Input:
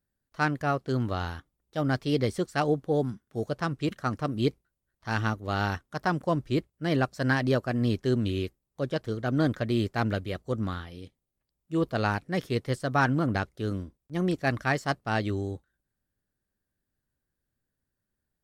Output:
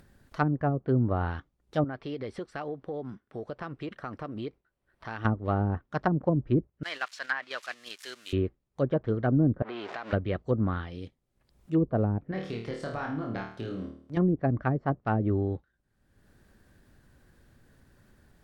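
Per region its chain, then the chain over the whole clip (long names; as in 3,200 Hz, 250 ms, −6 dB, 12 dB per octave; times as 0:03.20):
0:01.84–0:05.25: bass and treble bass −8 dB, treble −8 dB + downward compressor 4 to 1, threshold −37 dBFS + notch filter 6,700 Hz, Q 7.2
0:06.83–0:08.33: spike at every zero crossing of −28 dBFS + high-pass filter 1,500 Hz + noise gate −43 dBFS, range −7 dB
0:09.62–0:10.13: converter with a step at zero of −30 dBFS + band-pass filter 610–3,900 Hz + downward compressor 16 to 1, threshold −35 dBFS
0:12.31–0:14.17: high-pass filter 160 Hz 6 dB per octave + downward compressor 8 to 1, threshold −35 dBFS + flutter between parallel walls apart 4.5 metres, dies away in 0.49 s
whole clip: treble cut that deepens with the level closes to 340 Hz, closed at −22 dBFS; high-shelf EQ 5,100 Hz −11 dB; upward compression, threshold −44 dBFS; level +3.5 dB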